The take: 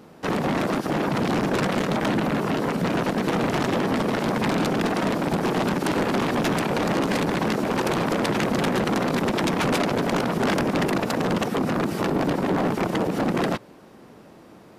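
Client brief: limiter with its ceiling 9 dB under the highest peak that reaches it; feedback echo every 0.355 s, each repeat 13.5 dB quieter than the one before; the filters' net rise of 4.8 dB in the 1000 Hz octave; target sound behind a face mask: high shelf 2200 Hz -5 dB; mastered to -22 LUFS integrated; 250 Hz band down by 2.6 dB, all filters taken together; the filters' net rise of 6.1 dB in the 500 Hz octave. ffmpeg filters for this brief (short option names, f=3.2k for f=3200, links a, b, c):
-af "equalizer=f=250:t=o:g=-6.5,equalizer=f=500:t=o:g=8.5,equalizer=f=1k:t=o:g=4.5,alimiter=limit=-17dB:level=0:latency=1,highshelf=f=2.2k:g=-5,aecho=1:1:355|710:0.211|0.0444,volume=4dB"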